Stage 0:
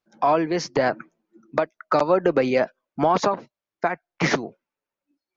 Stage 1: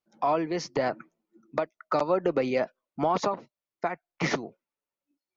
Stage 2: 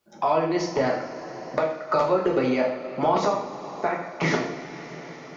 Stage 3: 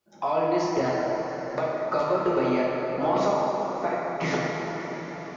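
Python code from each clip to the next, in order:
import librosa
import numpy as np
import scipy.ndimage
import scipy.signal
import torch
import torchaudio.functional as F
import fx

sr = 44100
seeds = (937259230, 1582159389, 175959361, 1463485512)

y1 = fx.notch(x, sr, hz=1600.0, q=10.0)
y1 = y1 * 10.0 ** (-6.0 / 20.0)
y2 = fx.rev_double_slope(y1, sr, seeds[0], early_s=0.55, late_s=4.3, knee_db=-19, drr_db=-2.5)
y2 = fx.band_squash(y2, sr, depth_pct=40)
y3 = fx.rev_plate(y2, sr, seeds[1], rt60_s=4.6, hf_ratio=0.5, predelay_ms=0, drr_db=-1.0)
y3 = y3 * 10.0 ** (-5.0 / 20.0)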